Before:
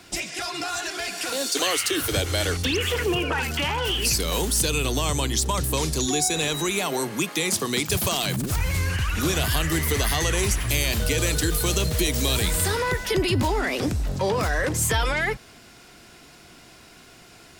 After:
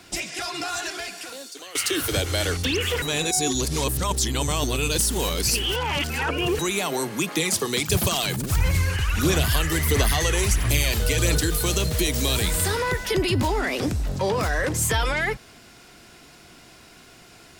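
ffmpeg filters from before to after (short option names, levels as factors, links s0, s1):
-filter_complex "[0:a]asplit=3[s0][s1][s2];[s0]afade=t=out:st=7.24:d=0.02[s3];[s1]aphaser=in_gain=1:out_gain=1:delay=2.4:decay=0.38:speed=1.5:type=sinusoidal,afade=t=in:st=7.24:d=0.02,afade=t=out:st=11.39:d=0.02[s4];[s2]afade=t=in:st=11.39:d=0.02[s5];[s3][s4][s5]amix=inputs=3:normalize=0,asplit=4[s6][s7][s8][s9];[s6]atrim=end=1.75,asetpts=PTS-STARTPTS,afade=t=out:st=0.88:d=0.87:c=qua:silence=0.125893[s10];[s7]atrim=start=1.75:end=3.022,asetpts=PTS-STARTPTS,afade=t=in:d=0.004:c=hsin:silence=0.125893[s11];[s8]atrim=start=3.018:end=6.592,asetpts=PTS-STARTPTS,areverse[s12];[s9]atrim=start=6.588[s13];[s10][s11]concat=n=2:v=0:a=1[s14];[s14][s12]acrossfade=d=0.004:c1=hsin:c2=hsin[s15];[s15][s13]acrossfade=d=0.004:c1=hsin:c2=hsin"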